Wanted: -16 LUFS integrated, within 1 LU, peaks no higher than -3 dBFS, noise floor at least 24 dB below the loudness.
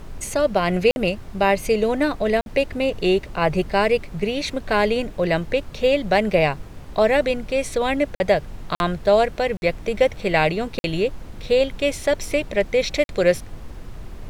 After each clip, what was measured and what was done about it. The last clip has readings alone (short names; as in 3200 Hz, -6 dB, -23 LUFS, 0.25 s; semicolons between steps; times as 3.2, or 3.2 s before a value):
dropouts 7; longest dropout 51 ms; noise floor -39 dBFS; noise floor target -46 dBFS; loudness -21.5 LUFS; peak -5.0 dBFS; loudness target -16.0 LUFS
-> interpolate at 0.91/2.41/8.15/8.75/9.57/10.79/13.04, 51 ms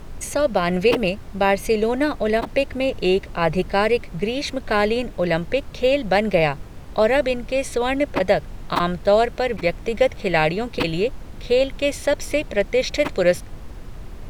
dropouts 0; noise floor -37 dBFS; noise floor target -45 dBFS
-> noise print and reduce 8 dB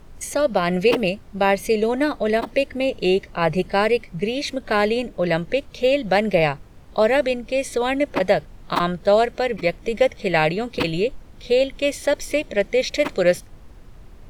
noise floor -45 dBFS; noise floor target -46 dBFS
-> noise print and reduce 6 dB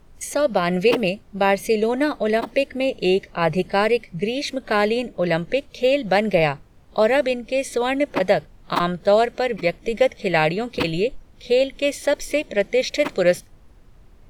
noise floor -50 dBFS; loudness -21.5 LUFS; peak -5.0 dBFS; loudness target -16.0 LUFS
-> gain +5.5 dB; limiter -3 dBFS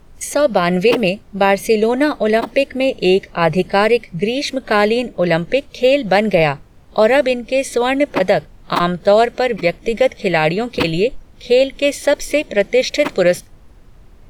loudness -16.0 LUFS; peak -3.0 dBFS; noise floor -44 dBFS